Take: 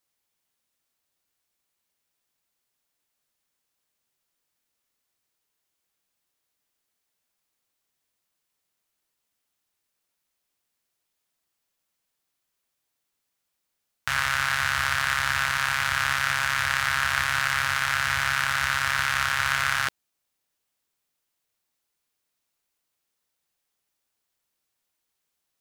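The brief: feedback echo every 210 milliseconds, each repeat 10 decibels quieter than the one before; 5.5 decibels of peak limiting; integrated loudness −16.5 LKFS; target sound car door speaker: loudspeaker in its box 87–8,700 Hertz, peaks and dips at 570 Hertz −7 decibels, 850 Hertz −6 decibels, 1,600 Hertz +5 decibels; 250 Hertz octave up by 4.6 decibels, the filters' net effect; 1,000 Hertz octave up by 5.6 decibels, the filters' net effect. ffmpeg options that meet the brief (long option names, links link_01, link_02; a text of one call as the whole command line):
ffmpeg -i in.wav -af "equalizer=frequency=250:width_type=o:gain=8,equalizer=frequency=1000:width_type=o:gain=7.5,alimiter=limit=-10.5dB:level=0:latency=1,highpass=87,equalizer=frequency=570:width_type=q:width=4:gain=-7,equalizer=frequency=850:width_type=q:width=4:gain=-6,equalizer=frequency=1600:width_type=q:width=4:gain=5,lowpass=frequency=8700:width=0.5412,lowpass=frequency=8700:width=1.3066,aecho=1:1:210|420|630|840:0.316|0.101|0.0324|0.0104,volume=5dB" out.wav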